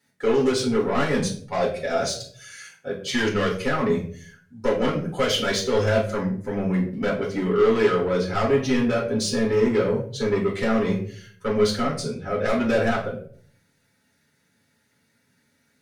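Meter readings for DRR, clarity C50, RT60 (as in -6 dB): -4.5 dB, 8.0 dB, 0.50 s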